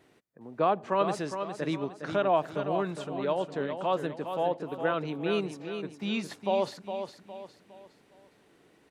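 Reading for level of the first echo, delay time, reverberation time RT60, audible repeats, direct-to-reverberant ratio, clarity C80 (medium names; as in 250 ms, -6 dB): -8.0 dB, 410 ms, no reverb, 4, no reverb, no reverb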